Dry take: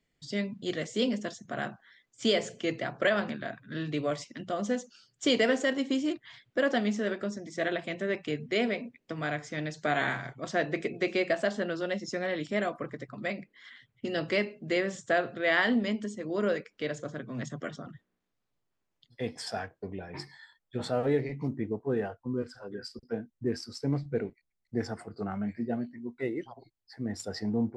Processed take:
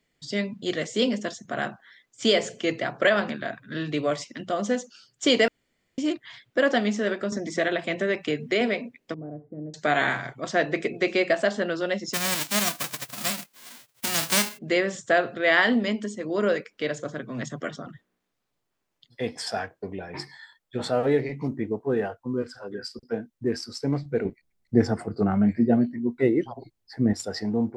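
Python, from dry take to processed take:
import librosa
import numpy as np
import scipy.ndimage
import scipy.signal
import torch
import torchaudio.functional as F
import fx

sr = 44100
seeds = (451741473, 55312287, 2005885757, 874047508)

y = fx.band_squash(x, sr, depth_pct=70, at=(7.32, 8.61))
y = fx.ladder_lowpass(y, sr, hz=550.0, resonance_pct=20, at=(9.14, 9.74))
y = fx.envelope_flatten(y, sr, power=0.1, at=(12.13, 14.57), fade=0.02)
y = fx.low_shelf(y, sr, hz=480.0, db=11.0, at=(24.25, 27.13))
y = fx.edit(y, sr, fx.room_tone_fill(start_s=5.48, length_s=0.5), tone=tone)
y = fx.low_shelf(y, sr, hz=170.0, db=-6.5)
y = y * 10.0 ** (6.0 / 20.0)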